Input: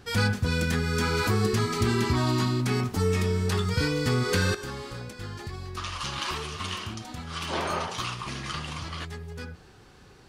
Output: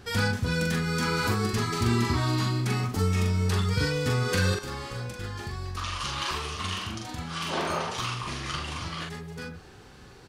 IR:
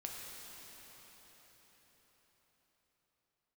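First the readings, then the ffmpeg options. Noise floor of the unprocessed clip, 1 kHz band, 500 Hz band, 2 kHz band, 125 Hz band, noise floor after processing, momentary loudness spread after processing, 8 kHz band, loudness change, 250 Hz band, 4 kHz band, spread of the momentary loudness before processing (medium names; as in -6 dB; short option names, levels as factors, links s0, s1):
-52 dBFS, +0.5 dB, -2.5 dB, 0.0 dB, 0.0 dB, -49 dBFS, 11 LU, 0.0 dB, -0.5 dB, -1.0 dB, 0.0 dB, 13 LU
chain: -filter_complex "[0:a]asplit=2[s0][s1];[s1]acompressor=threshold=0.0158:ratio=6,volume=0.841[s2];[s0][s2]amix=inputs=2:normalize=0,asplit=2[s3][s4];[s4]adelay=42,volume=0.668[s5];[s3][s5]amix=inputs=2:normalize=0,volume=0.668"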